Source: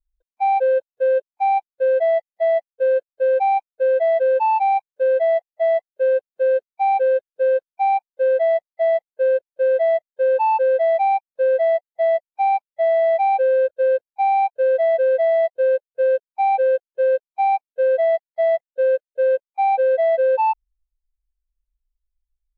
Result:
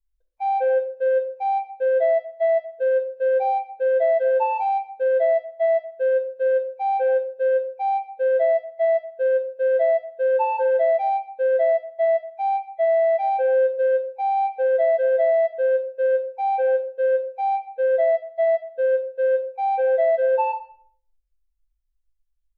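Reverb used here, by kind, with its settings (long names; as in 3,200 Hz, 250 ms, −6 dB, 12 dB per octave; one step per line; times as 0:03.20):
rectangular room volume 690 cubic metres, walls furnished, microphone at 1.6 metres
level −4 dB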